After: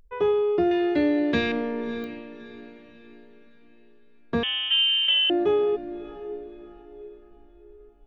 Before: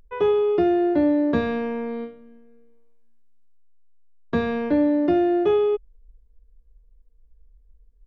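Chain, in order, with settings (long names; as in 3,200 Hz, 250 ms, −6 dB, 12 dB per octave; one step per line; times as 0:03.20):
0:00.71–0:01.52: high shelf with overshoot 1,600 Hz +10.5 dB, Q 1.5
feedback delay with all-pass diffusion 612 ms, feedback 42%, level −14 dB
0:04.43–0:05.30: voice inversion scrambler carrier 3,400 Hz
digital clicks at 0:02.04, −24 dBFS
level −2.5 dB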